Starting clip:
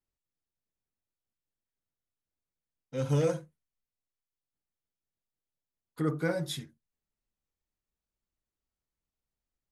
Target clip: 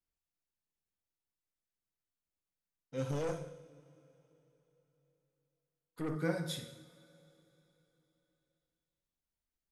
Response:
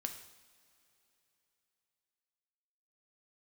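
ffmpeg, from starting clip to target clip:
-filter_complex "[1:a]atrim=start_sample=2205[link_01];[0:a][link_01]afir=irnorm=-1:irlink=0,asettb=1/sr,asplit=3[link_02][link_03][link_04];[link_02]atrim=end=3.114[link_05];[link_03]atrim=start=3.11:end=6.16,asetpts=PTS-STARTPTS,afade=type=in:duration=0.004:curve=qsin,afade=type=out:start_time=3.046:duration=0.004:curve=qsin,aeval=exprs='(tanh(28.2*val(0)+0.45)-tanh(0.45))/28.2':channel_layout=same[link_06];[link_04]atrim=start=6.156[link_07];[link_05][link_06]acrossfade=duration=0.004:curve1=hsin:curve2=qsin[link_08];[link_08][link_07]acrossfade=duration=0.004:curve1=qsin:curve2=hsin,volume=-2.5dB"

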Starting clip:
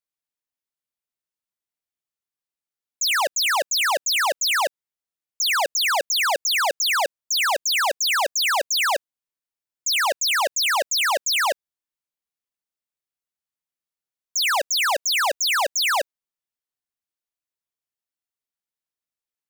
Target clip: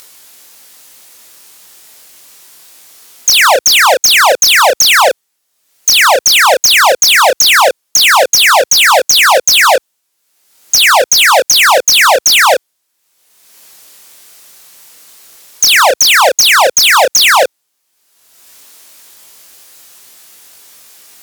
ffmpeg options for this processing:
ffmpeg -i in.wav -af "highpass=60,bass=frequency=250:gain=-8,treble=frequency=4000:gain=5,acompressor=mode=upward:threshold=-40dB:ratio=2.5,asoftclip=type=hard:threshold=-24.5dB,flanger=delay=19:depth=7.8:speed=0.11,asetrate=40517,aresample=44100,alimiter=level_in=26.5dB:limit=-1dB:release=50:level=0:latency=1,volume=-1dB" out.wav

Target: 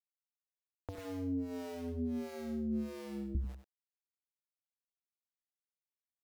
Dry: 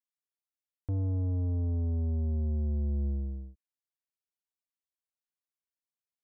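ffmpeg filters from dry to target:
ffmpeg -i in.wav -filter_complex "[0:a]asettb=1/sr,asplit=3[link_01][link_02][link_03];[link_01]atrim=end=0.954[link_04];[link_02]atrim=start=0.95:end=3.35,asetpts=PTS-STARTPTS,afade=type=in:duration=0.004:curve=qsin,afade=type=out:start_time=2.396:duration=0.004:curve=qsin,highpass=frequency=160:width=0.5412,highpass=frequency=160:width=1.3066[link_05];[link_03]atrim=start=3.346[link_06];[link_04][link_05]acrossfade=duration=0.004:curve1=hsin:curve2=qsin[link_07];[link_07][link_06]acrossfade=duration=0.004:curve1=qsin:curve2=hsin,bandreject=frequency=50:width_type=h:width=6,bandreject=frequency=100:width_type=h:width=6,bandreject=frequency=150:width_type=h:width=6,bandreject=frequency=200:width_type=h:width=6,bandreject=frequency=250:width_type=h:width=6,bandreject=frequency=300:width_type=h:width=6,acompressor=threshold=-43dB:ratio=5,aeval=exprs='val(0)*gte(abs(val(0)),0.00188)':channel_layout=same,acrossover=split=400[link_08][link_09];[link_08]aeval=exprs='val(0)*(1-1/2+1/2*cos(2*PI*1.5*n/s))':channel_layout=same[link_10];[link_09]aeval=exprs='val(0)*(1-1/2-1/2*cos(2*PI*1.5*n/s))':channel_layout=same[link_11];[link_10][link_11]amix=inputs=2:normalize=0,aecho=1:1:95:0.316,volume=12dB" out.wav

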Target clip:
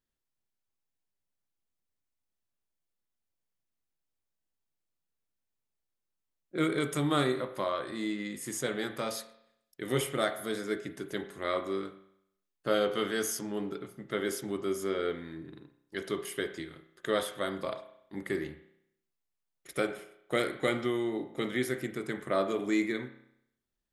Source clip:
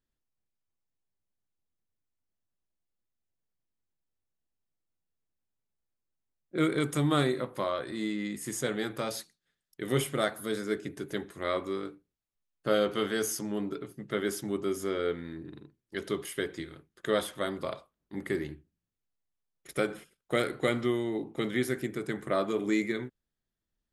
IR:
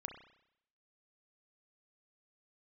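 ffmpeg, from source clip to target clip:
-filter_complex "[0:a]asplit=2[link_01][link_02];[1:a]atrim=start_sample=2205,lowshelf=frequency=180:gain=-10[link_03];[link_02][link_03]afir=irnorm=-1:irlink=0,volume=5dB[link_04];[link_01][link_04]amix=inputs=2:normalize=0,volume=-7dB"

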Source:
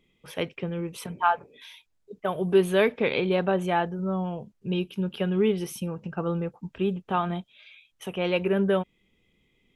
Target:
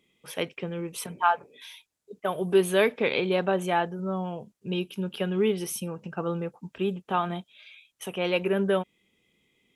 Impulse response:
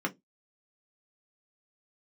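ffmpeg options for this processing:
-af "highpass=frequency=190:poles=1,equalizer=frequency=9500:width=0.67:gain=7"

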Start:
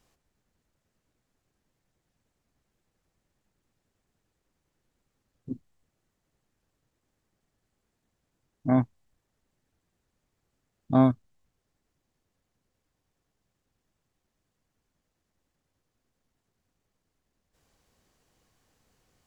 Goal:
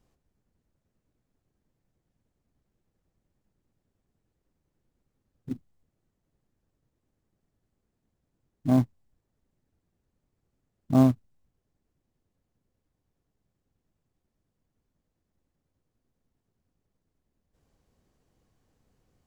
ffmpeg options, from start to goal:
ffmpeg -i in.wav -af "acrusher=bits=4:mode=log:mix=0:aa=0.000001,tiltshelf=frequency=720:gain=5.5,volume=-3dB" out.wav

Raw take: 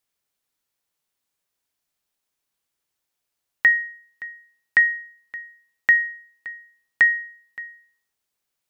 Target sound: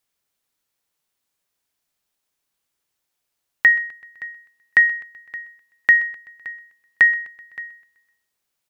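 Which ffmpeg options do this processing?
ffmpeg -i in.wav -af "aecho=1:1:127|254|381|508:0.1|0.053|0.0281|0.0149,volume=2.5dB" out.wav

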